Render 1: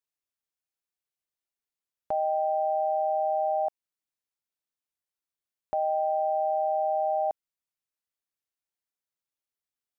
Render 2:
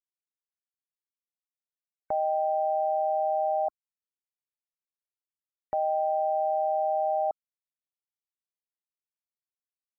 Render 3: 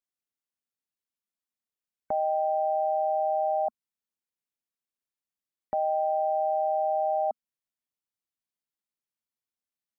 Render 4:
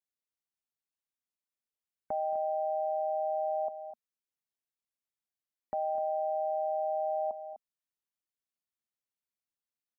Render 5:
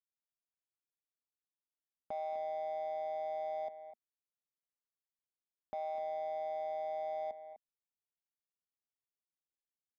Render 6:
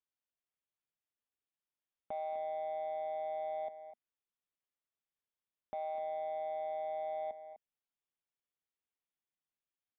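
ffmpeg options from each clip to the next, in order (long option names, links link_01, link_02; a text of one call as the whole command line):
ffmpeg -i in.wav -af "afftfilt=real='re*gte(hypot(re,im),0.00316)':imag='im*gte(hypot(re,im),0.00316)':win_size=1024:overlap=0.75" out.wav
ffmpeg -i in.wav -af "equalizer=frequency=230:width_type=o:width=0.57:gain=7.5" out.wav
ffmpeg -i in.wav -af "aecho=1:1:223|252:0.119|0.224,volume=-5.5dB" out.wav
ffmpeg -i in.wav -af "adynamicsmooth=sensitivity=6.5:basefreq=930,volume=-6.5dB" out.wav
ffmpeg -i in.wav -af "aresample=8000,aresample=44100" out.wav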